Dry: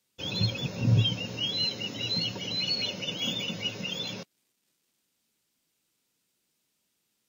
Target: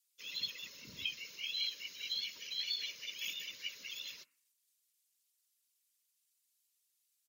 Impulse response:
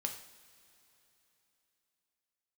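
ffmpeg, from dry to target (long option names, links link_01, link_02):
-filter_complex "[0:a]bandreject=frequency=123.6:width_type=h:width=4,bandreject=frequency=247.2:width_type=h:width=4,bandreject=frequency=370.8:width_type=h:width=4,bandreject=frequency=494.4:width_type=h:width=4,bandreject=frequency=618:width_type=h:width=4,bandreject=frequency=741.6:width_type=h:width=4,bandreject=frequency=865.2:width_type=h:width=4,bandreject=frequency=988.8:width_type=h:width=4,bandreject=frequency=1112.4:width_type=h:width=4,bandreject=frequency=1236:width_type=h:width=4,bandreject=frequency=1359.6:width_type=h:width=4,bandreject=frequency=1483.2:width_type=h:width=4,bandreject=frequency=1606.8:width_type=h:width=4,bandreject=frequency=1730.4:width_type=h:width=4,bandreject=frequency=1854:width_type=h:width=4,bandreject=frequency=1977.6:width_type=h:width=4,bandreject=frequency=2101.2:width_type=h:width=4,bandreject=frequency=2224.8:width_type=h:width=4,bandreject=frequency=2348.4:width_type=h:width=4,bandreject=frequency=2472:width_type=h:width=4,bandreject=frequency=2595.6:width_type=h:width=4,bandreject=frequency=2719.2:width_type=h:width=4,bandreject=frequency=2842.8:width_type=h:width=4,bandreject=frequency=2966.4:width_type=h:width=4,asplit=2[link_01][link_02];[link_02]asetrate=35002,aresample=44100,atempo=1.25992,volume=-1dB[link_03];[link_01][link_03]amix=inputs=2:normalize=0,afftfilt=real='hypot(re,im)*cos(2*PI*random(0))':imag='hypot(re,im)*sin(2*PI*random(1))':win_size=512:overlap=0.75,asuperstop=centerf=760:order=8:qfactor=2.9,aderivative,volume=1dB"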